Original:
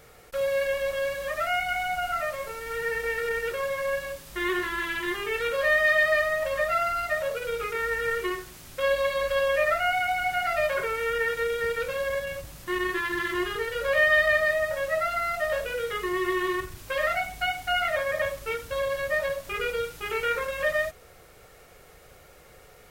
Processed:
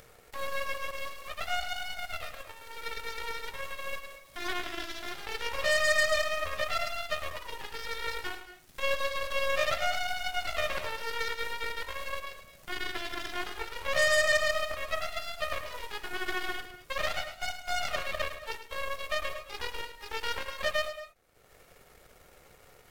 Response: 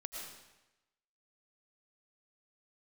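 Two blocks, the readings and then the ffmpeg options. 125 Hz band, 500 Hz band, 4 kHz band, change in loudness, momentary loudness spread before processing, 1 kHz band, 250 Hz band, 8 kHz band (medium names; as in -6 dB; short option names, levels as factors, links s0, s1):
-5.0 dB, -8.5 dB, +1.0 dB, -6.0 dB, 8 LU, -6.5 dB, -12.5 dB, +1.5 dB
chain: -filter_complex "[0:a]aeval=exprs='0.282*(cos(1*acos(clip(val(0)/0.282,-1,1)))-cos(1*PI/2))+0.0447*(cos(7*acos(clip(val(0)/0.282,-1,1)))-cos(7*PI/2))+0.0355*(cos(8*acos(clip(val(0)/0.282,-1,1)))-cos(8*PI/2))':c=same,asplit=2[s0][s1];[1:a]atrim=start_sample=2205,atrim=end_sample=6174,adelay=106[s2];[s1][s2]afir=irnorm=-1:irlink=0,volume=0.473[s3];[s0][s3]amix=inputs=2:normalize=0,acompressor=mode=upward:threshold=0.02:ratio=2.5,volume=0.562"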